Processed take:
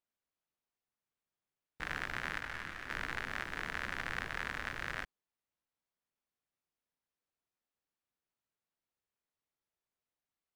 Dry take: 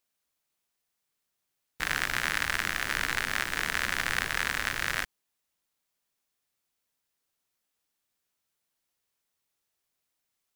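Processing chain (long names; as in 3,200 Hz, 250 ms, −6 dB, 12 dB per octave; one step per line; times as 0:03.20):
low-pass filter 1,600 Hz 6 dB per octave
0:02.40–0:02.90: micro pitch shift up and down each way 43 cents
level −6 dB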